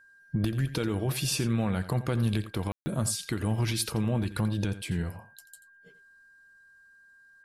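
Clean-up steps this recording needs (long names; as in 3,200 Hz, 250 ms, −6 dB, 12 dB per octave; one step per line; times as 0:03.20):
notch filter 1,600 Hz, Q 30
ambience match 0:02.72–0:02.86
echo removal 86 ms −13.5 dB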